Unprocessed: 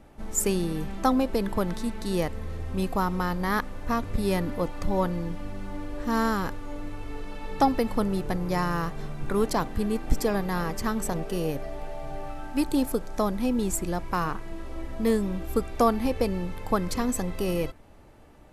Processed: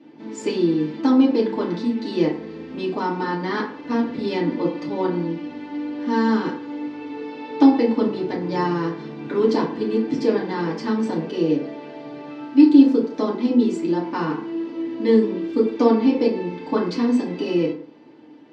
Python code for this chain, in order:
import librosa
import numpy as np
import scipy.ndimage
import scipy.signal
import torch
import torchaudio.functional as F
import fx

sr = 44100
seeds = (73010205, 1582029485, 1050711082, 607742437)

y = fx.cabinet(x, sr, low_hz=170.0, low_slope=24, high_hz=5000.0, hz=(240.0, 350.0, 700.0, 1300.0, 3100.0, 4500.0), db=(9, 8, -7, -7, 4, 4))
y = fx.rev_fdn(y, sr, rt60_s=0.52, lf_ratio=0.85, hf_ratio=0.5, size_ms=20.0, drr_db=-6.0)
y = y * 10.0 ** (-3.5 / 20.0)